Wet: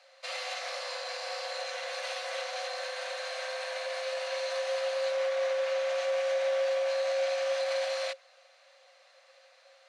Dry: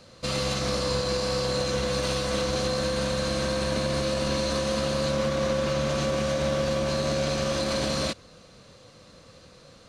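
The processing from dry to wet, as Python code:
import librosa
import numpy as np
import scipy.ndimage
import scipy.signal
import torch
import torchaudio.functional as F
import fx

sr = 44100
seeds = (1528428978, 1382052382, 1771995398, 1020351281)

y = scipy.signal.sosfilt(scipy.signal.cheby1(6, 9, 520.0, 'highpass', fs=sr, output='sos'), x)
y = fx.high_shelf(y, sr, hz=9200.0, db=-6.5)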